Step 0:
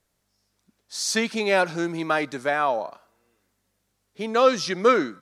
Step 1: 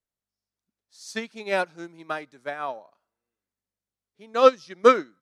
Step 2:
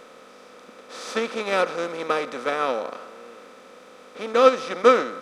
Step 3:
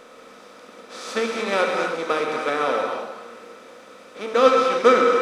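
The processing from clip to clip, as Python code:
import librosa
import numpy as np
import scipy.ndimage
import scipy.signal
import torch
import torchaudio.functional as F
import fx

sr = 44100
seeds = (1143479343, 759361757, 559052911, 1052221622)

y1 = fx.upward_expand(x, sr, threshold_db=-29.0, expansion=2.5)
y1 = y1 * librosa.db_to_amplitude(4.0)
y2 = fx.bin_compress(y1, sr, power=0.4)
y2 = y2 * librosa.db_to_amplitude(-2.0)
y3 = fx.rev_gated(y2, sr, seeds[0], gate_ms=330, shape='flat', drr_db=1.0)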